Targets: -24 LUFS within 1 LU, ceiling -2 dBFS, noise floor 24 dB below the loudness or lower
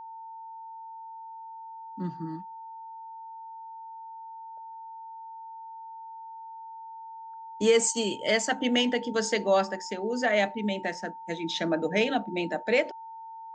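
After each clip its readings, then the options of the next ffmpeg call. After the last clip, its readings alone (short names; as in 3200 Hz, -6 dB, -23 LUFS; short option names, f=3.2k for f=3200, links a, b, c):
steady tone 900 Hz; tone level -40 dBFS; loudness -27.5 LUFS; peak -11.5 dBFS; loudness target -24.0 LUFS
-> -af "bandreject=f=900:w=30"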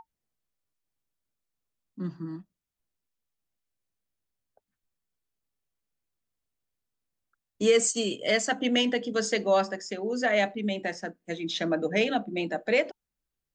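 steady tone none; loudness -27.0 LUFS; peak -11.5 dBFS; loudness target -24.0 LUFS
-> -af "volume=3dB"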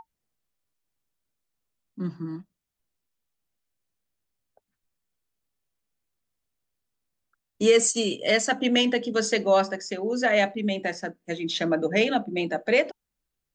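loudness -24.0 LUFS; peak -8.5 dBFS; noise floor -84 dBFS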